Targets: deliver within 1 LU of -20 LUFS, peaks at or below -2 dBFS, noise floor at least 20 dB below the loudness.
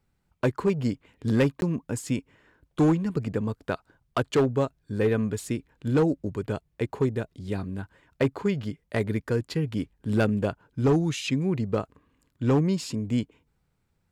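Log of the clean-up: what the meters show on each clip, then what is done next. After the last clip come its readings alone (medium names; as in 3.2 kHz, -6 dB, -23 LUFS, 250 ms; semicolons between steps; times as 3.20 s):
clipped samples 0.8%; clipping level -16.0 dBFS; dropouts 1; longest dropout 11 ms; loudness -27.5 LUFS; peak level -16.0 dBFS; loudness target -20.0 LUFS
-> clip repair -16 dBFS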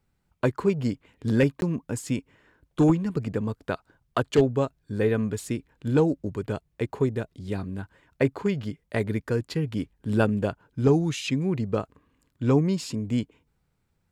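clipped samples 0.0%; dropouts 1; longest dropout 11 ms
-> interpolate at 1.61 s, 11 ms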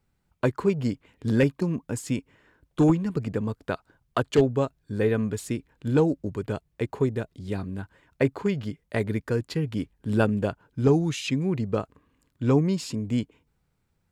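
dropouts 0; loudness -27.0 LUFS; peak level -7.0 dBFS; loudness target -20.0 LUFS
-> trim +7 dB; peak limiter -2 dBFS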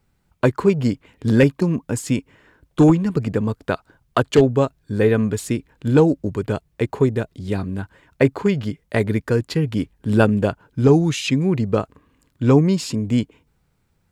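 loudness -20.0 LUFS; peak level -2.0 dBFS; noise floor -66 dBFS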